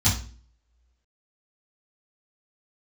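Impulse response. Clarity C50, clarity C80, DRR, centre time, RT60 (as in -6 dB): 6.5 dB, 13.0 dB, -11.5 dB, 29 ms, 0.40 s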